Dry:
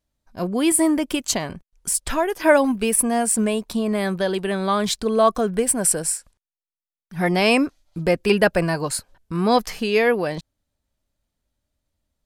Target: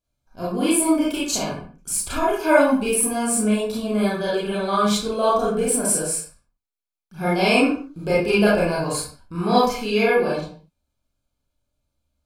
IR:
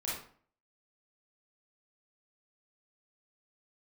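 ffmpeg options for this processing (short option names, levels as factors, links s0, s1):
-filter_complex "[0:a]asuperstop=centerf=1900:order=20:qfactor=6[s0];[1:a]atrim=start_sample=2205,afade=t=out:st=0.35:d=0.01,atrim=end_sample=15876[s1];[s0][s1]afir=irnorm=-1:irlink=0,volume=0.75"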